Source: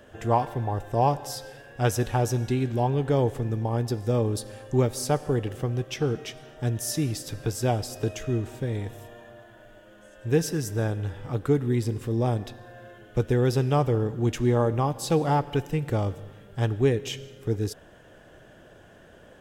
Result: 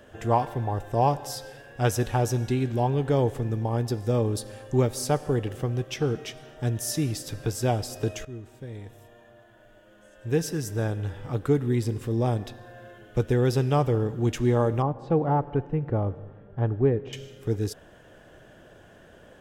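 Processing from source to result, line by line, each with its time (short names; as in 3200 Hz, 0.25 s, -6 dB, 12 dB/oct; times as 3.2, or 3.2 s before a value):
8.25–11.15 fade in, from -13.5 dB
14.82–17.13 LPF 1200 Hz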